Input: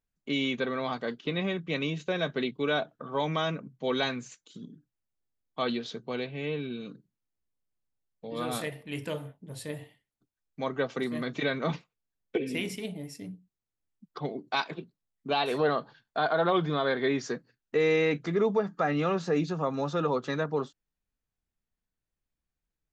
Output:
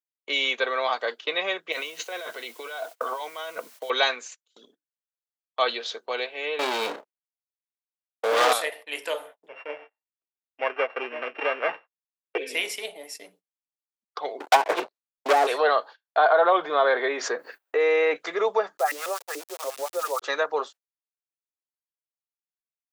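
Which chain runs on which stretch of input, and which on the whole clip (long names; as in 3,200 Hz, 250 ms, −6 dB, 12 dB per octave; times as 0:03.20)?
0:01.72–0:03.90: EQ curve with evenly spaced ripples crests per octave 1.9, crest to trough 7 dB + compressor whose output falls as the input rises −38 dBFS + bit-depth reduction 10 bits, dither triangular
0:06.59–0:08.53: high-shelf EQ 4,900 Hz −11 dB + leveller curve on the samples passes 5 + double-tracking delay 31 ms −10 dB
0:09.48–0:12.38: samples sorted by size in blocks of 16 samples + low-pass filter 2,300 Hz 24 dB per octave
0:14.40–0:15.47: treble cut that deepens with the level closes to 350 Hz, closed at −25 dBFS + leveller curve on the samples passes 5
0:16.17–0:18.16: parametric band 6,100 Hz −13.5 dB 2.3 octaves + envelope flattener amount 50%
0:18.77–0:20.22: auto-filter band-pass saw up 6.9 Hz 230–2,300 Hz + centre clipping without the shift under −45 dBFS + bass and treble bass −6 dB, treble +12 dB
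whole clip: noise gate −46 dBFS, range −25 dB; high-pass filter 520 Hz 24 dB per octave; level +8.5 dB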